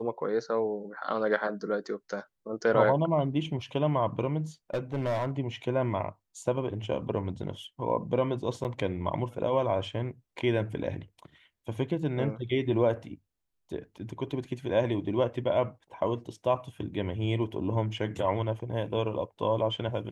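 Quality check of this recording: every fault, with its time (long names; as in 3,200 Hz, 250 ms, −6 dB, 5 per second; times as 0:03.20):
0:04.74–0:05.31: clipping −25 dBFS
0:08.64–0:08.65: drop-out 8.6 ms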